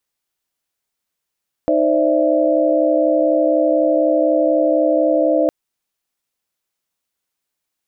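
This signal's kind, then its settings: chord D#4/C5/D5/E5 sine, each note -18 dBFS 3.81 s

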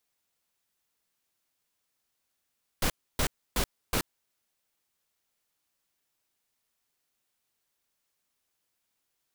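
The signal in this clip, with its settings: noise bursts pink, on 0.08 s, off 0.29 s, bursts 4, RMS -26.5 dBFS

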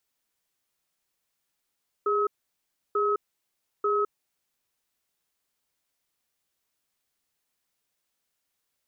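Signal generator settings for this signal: cadence 411 Hz, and 1.28 kHz, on 0.21 s, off 0.68 s, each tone -24.5 dBFS 2.41 s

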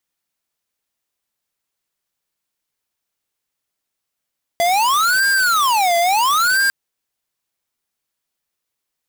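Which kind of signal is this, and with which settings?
siren wail 682–1600 Hz 0.73 per s square -15.5 dBFS 2.10 s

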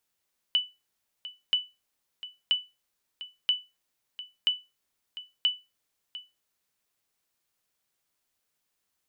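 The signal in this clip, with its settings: sonar ping 2.98 kHz, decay 0.24 s, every 0.98 s, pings 6, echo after 0.70 s, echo -15.5 dB -16 dBFS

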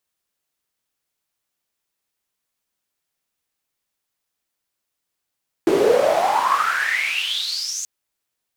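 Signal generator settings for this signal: swept filtered noise white, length 2.18 s bandpass, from 340 Hz, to 6.8 kHz, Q 11, exponential, gain ramp -26 dB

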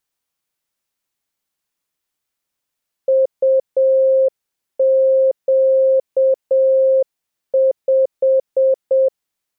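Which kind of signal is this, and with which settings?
Morse "UQ5" 7 wpm 530 Hz -10 dBFS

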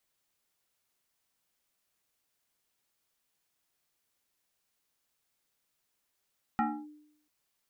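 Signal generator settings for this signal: FM tone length 0.69 s, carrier 300 Hz, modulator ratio 1.76, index 2.2, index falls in 0.28 s linear, decay 0.74 s, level -23 dB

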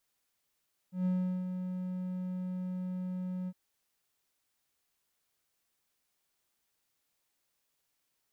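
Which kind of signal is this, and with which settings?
ADSR triangle 183 Hz, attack 136 ms, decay 385 ms, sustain -7.5 dB, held 2.56 s, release 49 ms -24.5 dBFS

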